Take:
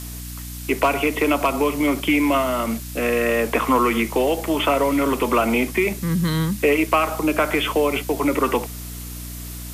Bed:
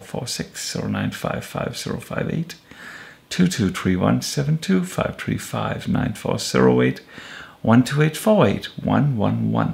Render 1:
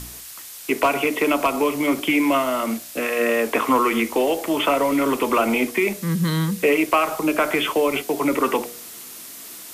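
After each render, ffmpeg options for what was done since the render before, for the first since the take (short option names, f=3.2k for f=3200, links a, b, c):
-af "bandreject=f=60:t=h:w=4,bandreject=f=120:t=h:w=4,bandreject=f=180:t=h:w=4,bandreject=f=240:t=h:w=4,bandreject=f=300:t=h:w=4,bandreject=f=360:t=h:w=4,bandreject=f=420:t=h:w=4,bandreject=f=480:t=h:w=4,bandreject=f=540:t=h:w=4,bandreject=f=600:t=h:w=4,bandreject=f=660:t=h:w=4,bandreject=f=720:t=h:w=4"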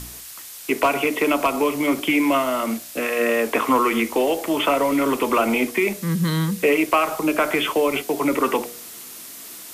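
-af anull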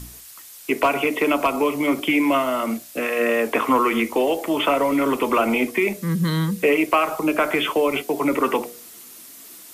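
-af "afftdn=nr=6:nf=-39"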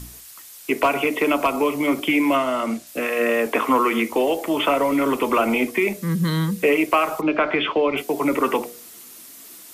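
-filter_complex "[0:a]asettb=1/sr,asplit=3[a][b][c];[a]atrim=end=2.364[d];[b]atrim=start=2.36:end=2.87,asetpts=PTS-STARTPTS,afade=t=in:d=0.004:c=qsin,afade=t=out:st=0.506:d=0.004:c=qsin,lowpass=9.5k[e];[c]atrim=start=2.866[f];[d][e]acrossfade=d=0.004:c1=hsin:c2=qsin[g];[g][f]acrossfade=d=0.004:c1=qsin:c2=hsin,asettb=1/sr,asplit=3[h][i][j];[h]atrim=end=3.464[k];[i]atrim=start=3.46:end=4.12,asetpts=PTS-STARTPTS,afade=t=in:d=0.004:c=qsin,afade=t=out:st=0.656:d=0.004:c=qsin,highpass=130[l];[j]atrim=start=4.116[m];[k][l]acrossfade=d=0.004:c1=hsin:c2=qsin[n];[n][m]acrossfade=d=0.004:c1=qsin:c2=hsin,asplit=3[o][p][q];[o]afade=t=out:st=7.2:d=0.02[r];[p]lowpass=f=4.1k:w=0.5412,lowpass=f=4.1k:w=1.3066,afade=t=in:st=7.2:d=0.02,afade=t=out:st=7.96:d=0.02[s];[q]afade=t=in:st=7.96:d=0.02[t];[r][s][t]amix=inputs=3:normalize=0"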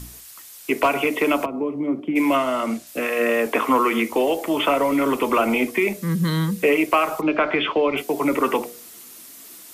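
-filter_complex "[0:a]asplit=3[a][b][c];[a]afade=t=out:st=1.44:d=0.02[d];[b]bandpass=f=200:t=q:w=0.82,afade=t=in:st=1.44:d=0.02,afade=t=out:st=2.15:d=0.02[e];[c]afade=t=in:st=2.15:d=0.02[f];[d][e][f]amix=inputs=3:normalize=0"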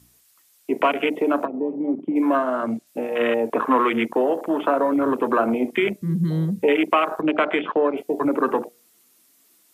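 -af "highpass=83,afwtdn=0.0794"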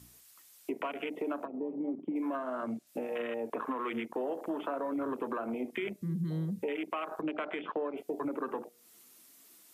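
-af "alimiter=limit=-15dB:level=0:latency=1:release=408,acompressor=threshold=-41dB:ratio=2"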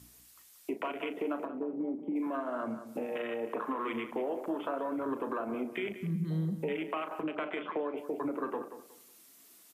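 -filter_complex "[0:a]asplit=2[a][b];[b]adelay=37,volume=-11.5dB[c];[a][c]amix=inputs=2:normalize=0,asplit=2[d][e];[e]adelay=183,lowpass=f=3.3k:p=1,volume=-11dB,asplit=2[f][g];[g]adelay=183,lowpass=f=3.3k:p=1,volume=0.25,asplit=2[h][i];[i]adelay=183,lowpass=f=3.3k:p=1,volume=0.25[j];[d][f][h][j]amix=inputs=4:normalize=0"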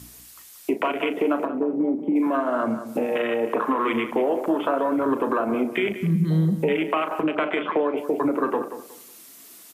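-af "volume=12dB"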